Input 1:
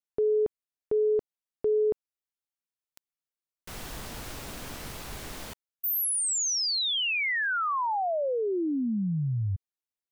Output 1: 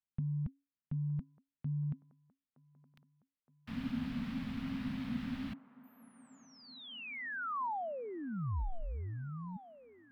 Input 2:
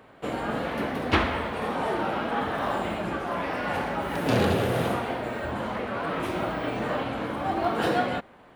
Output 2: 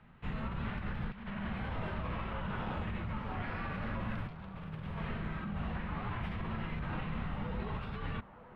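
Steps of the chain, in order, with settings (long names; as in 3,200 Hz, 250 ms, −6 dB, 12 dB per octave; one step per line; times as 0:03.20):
guitar amp tone stack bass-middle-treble 6-0-2
compressor whose output falls as the input rises −51 dBFS, ratio −1
frequency shifter −280 Hz
high-frequency loss of the air 400 metres
on a send: delay with a band-pass on its return 918 ms, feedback 68%, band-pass 680 Hz, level −13 dB
on the sum: level +13.5 dB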